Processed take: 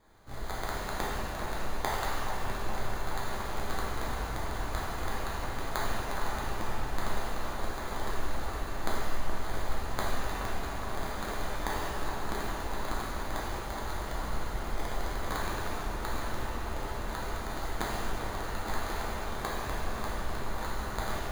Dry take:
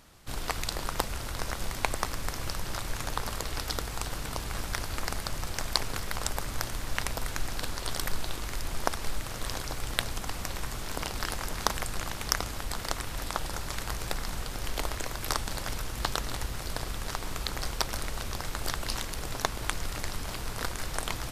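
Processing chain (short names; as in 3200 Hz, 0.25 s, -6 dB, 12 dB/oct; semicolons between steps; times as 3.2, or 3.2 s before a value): sample-and-hold 16×; analogue delay 0.422 s, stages 4096, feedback 77%, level -7 dB; shimmer reverb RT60 1.6 s, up +7 st, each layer -8 dB, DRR -5.5 dB; gain -9 dB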